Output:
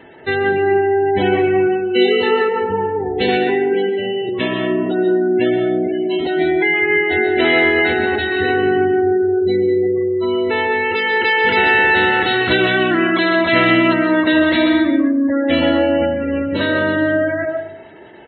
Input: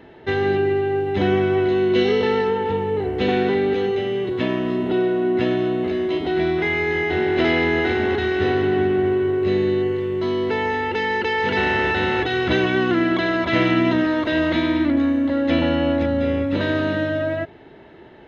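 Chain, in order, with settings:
spectral tilt +2 dB per octave
gate on every frequency bin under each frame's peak −20 dB strong
far-end echo of a speakerphone 120 ms, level −23 dB
on a send at −5 dB: convolution reverb RT60 0.75 s, pre-delay 95 ms
on the sum: level +5 dB

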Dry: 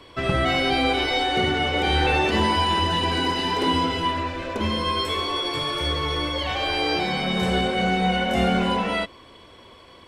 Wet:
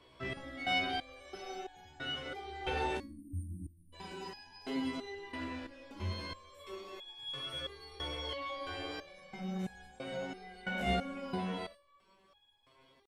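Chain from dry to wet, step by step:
tempo change 0.77×
time-frequency box erased 0:02.98–0:03.93, 340–8,200 Hz
step-sequenced resonator 3 Hz 64–830 Hz
level −5 dB

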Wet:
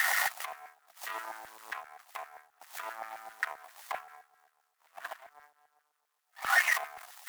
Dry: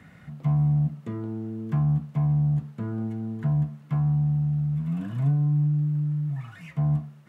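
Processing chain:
parametric band 1,900 Hz +13 dB 0.29 octaves
in parallel at −6 dB: hard clipping −27 dBFS, distortion −9 dB
on the sum: background noise white −50 dBFS
speech leveller within 10 dB 0.5 s
brickwall limiter −31.5 dBFS, peak gain reduction 17.5 dB
Chebyshev high-pass filter 480 Hz, order 2
parametric band 750 Hz +12 dB 0.55 octaves
harmonic generator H 7 −17 dB, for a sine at −30.5 dBFS
auto-filter high-pass saw down 7.6 Hz 760–1,600 Hz
multiband upward and downward expander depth 70%
level +8 dB

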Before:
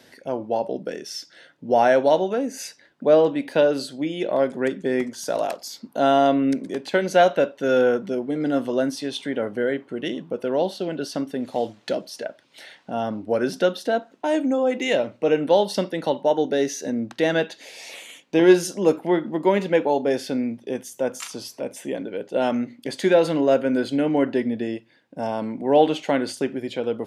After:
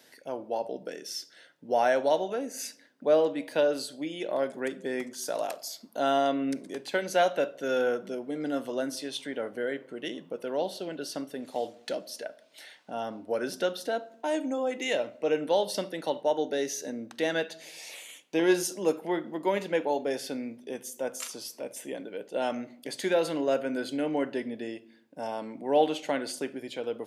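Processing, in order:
high-pass filter 320 Hz 6 dB per octave
high-shelf EQ 7,500 Hz +9.5 dB
rectangular room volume 2,100 cubic metres, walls furnished, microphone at 0.44 metres
level −6.5 dB

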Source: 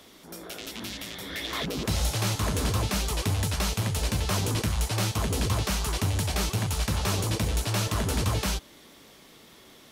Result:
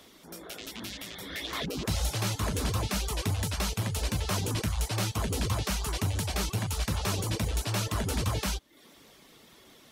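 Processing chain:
reverb reduction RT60 0.51 s
level −2 dB

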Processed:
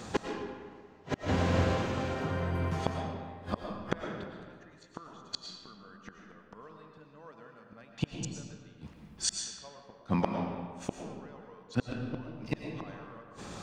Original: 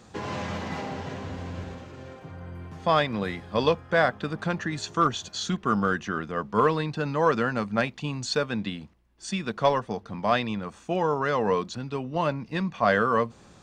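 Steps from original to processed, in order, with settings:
low-shelf EQ 120 Hz −3 dB
gate with flip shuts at −25 dBFS, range −38 dB
convolution reverb RT60 1.7 s, pre-delay 70 ms, DRR 2 dB
level +8.5 dB

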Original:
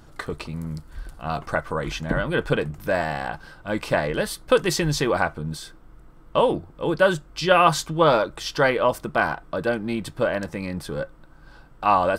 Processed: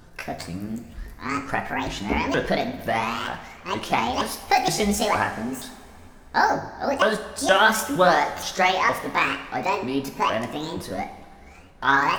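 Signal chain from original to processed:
pitch shifter swept by a sawtooth +11.5 semitones, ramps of 468 ms
coupled-rooms reverb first 0.58 s, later 2.9 s, from −15 dB, DRR 6 dB

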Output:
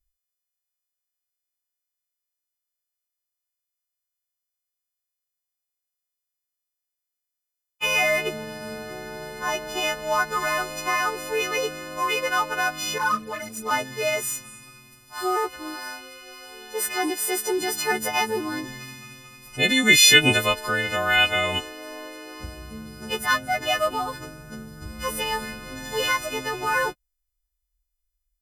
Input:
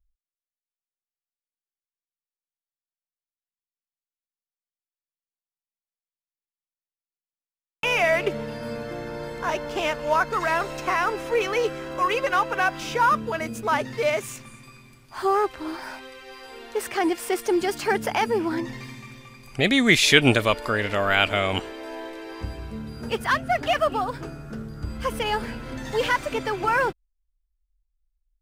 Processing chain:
every partial snapped to a pitch grid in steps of 3 semitones
0:12.98–0:13.71: string-ensemble chorus
level −3 dB

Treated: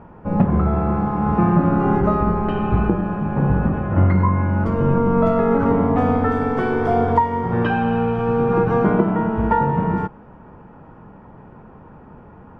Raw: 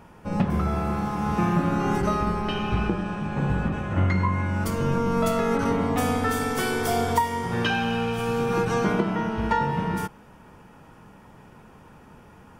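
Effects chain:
low-pass filter 1,200 Hz 12 dB per octave
level +7 dB

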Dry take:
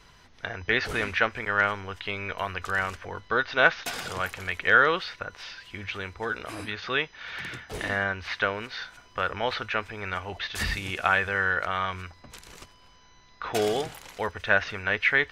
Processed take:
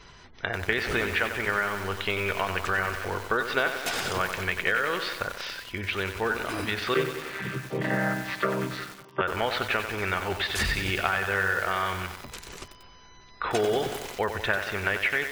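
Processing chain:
0:06.94–0:09.21: channel vocoder with a chord as carrier minor triad, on C3
gate on every frequency bin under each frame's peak −30 dB strong
downward compressor 12 to 1, threshold −27 dBFS, peak gain reduction 14.5 dB
parametric band 380 Hz +5 dB 0.26 octaves
feedback echo at a low word length 93 ms, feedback 80%, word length 7 bits, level −7.5 dB
level +4.5 dB

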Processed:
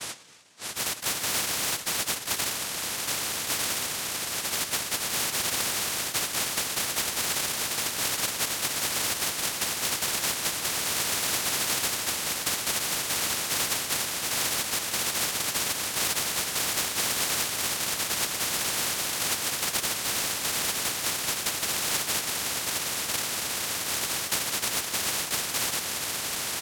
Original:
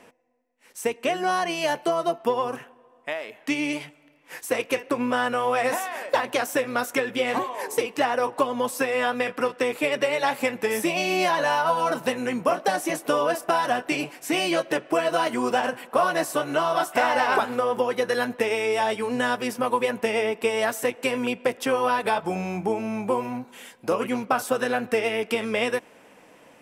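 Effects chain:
pitch shifter gated in a rhythm +4 semitones, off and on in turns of 78 ms
inverse Chebyshev high-pass filter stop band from 380 Hz, stop band 40 dB
spectral tilt +3 dB per octave
double-tracking delay 13 ms −2 dB
pitch vibrato 0.45 Hz 27 cents
on a send: feedback delay with all-pass diffusion 1,916 ms, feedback 49%, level −10.5 dB
on the sum: cochlear-implant simulation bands 1
every bin compressed towards the loudest bin 4 to 1
level −8 dB

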